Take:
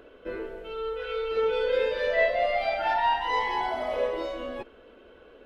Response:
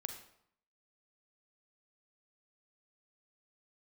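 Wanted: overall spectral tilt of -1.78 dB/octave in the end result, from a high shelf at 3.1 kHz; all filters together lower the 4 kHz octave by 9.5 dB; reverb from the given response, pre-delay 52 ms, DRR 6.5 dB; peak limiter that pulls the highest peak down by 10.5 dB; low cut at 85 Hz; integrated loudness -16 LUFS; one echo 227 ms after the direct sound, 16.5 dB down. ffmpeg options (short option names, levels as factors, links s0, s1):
-filter_complex "[0:a]highpass=85,highshelf=f=3100:g=-8,equalizer=f=4000:t=o:g=-8,alimiter=limit=0.0668:level=0:latency=1,aecho=1:1:227:0.15,asplit=2[s0][s1];[1:a]atrim=start_sample=2205,adelay=52[s2];[s1][s2]afir=irnorm=-1:irlink=0,volume=0.562[s3];[s0][s3]amix=inputs=2:normalize=0,volume=5.31"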